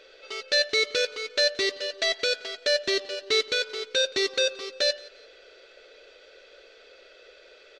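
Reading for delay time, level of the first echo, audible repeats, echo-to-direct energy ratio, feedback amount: 174 ms, -23.0 dB, 2, -22.5 dB, 33%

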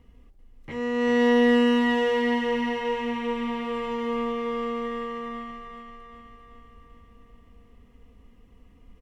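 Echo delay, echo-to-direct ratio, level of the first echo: 390 ms, -5.0 dB, -6.5 dB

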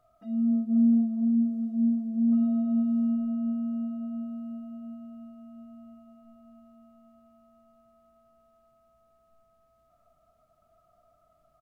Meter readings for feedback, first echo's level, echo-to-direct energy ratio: 55%, -10.0 dB, -8.5 dB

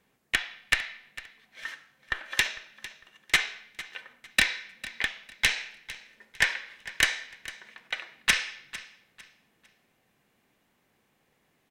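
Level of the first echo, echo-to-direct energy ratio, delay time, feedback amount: -17.0 dB, -16.5 dB, 452 ms, 28%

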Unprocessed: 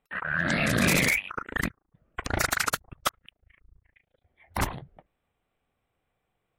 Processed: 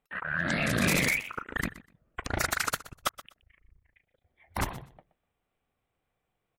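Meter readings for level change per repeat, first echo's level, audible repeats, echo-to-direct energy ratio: -15.5 dB, -17.0 dB, 2, -17.0 dB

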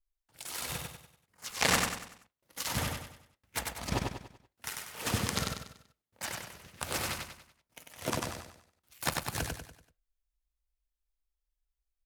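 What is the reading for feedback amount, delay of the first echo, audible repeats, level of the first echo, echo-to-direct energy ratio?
41%, 96 ms, 5, -3.5 dB, -2.5 dB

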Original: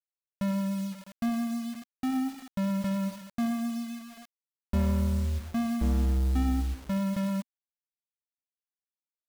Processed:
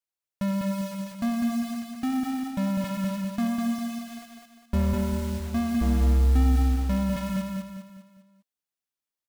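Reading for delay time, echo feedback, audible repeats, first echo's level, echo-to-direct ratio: 201 ms, 43%, 5, -3.5 dB, -2.5 dB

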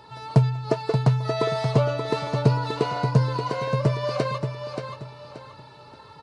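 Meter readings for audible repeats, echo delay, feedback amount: 3, 579 ms, 32%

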